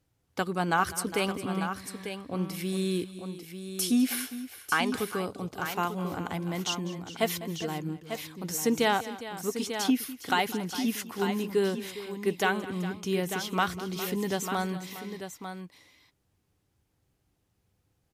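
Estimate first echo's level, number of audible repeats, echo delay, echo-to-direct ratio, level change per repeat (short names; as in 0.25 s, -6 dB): -17.0 dB, 3, 0.201 s, -7.5 dB, no steady repeat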